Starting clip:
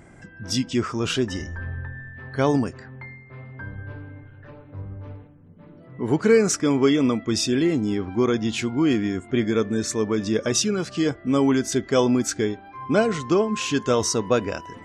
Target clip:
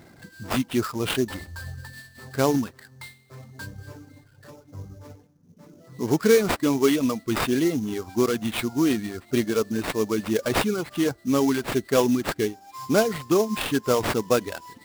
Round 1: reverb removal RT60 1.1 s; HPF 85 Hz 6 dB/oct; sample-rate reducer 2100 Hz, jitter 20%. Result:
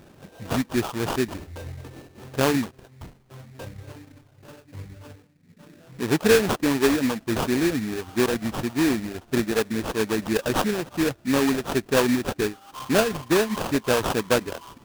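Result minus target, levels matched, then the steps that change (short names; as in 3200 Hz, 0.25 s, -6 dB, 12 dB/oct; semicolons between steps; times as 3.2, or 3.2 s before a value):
sample-rate reducer: distortion +6 dB
change: sample-rate reducer 6200 Hz, jitter 20%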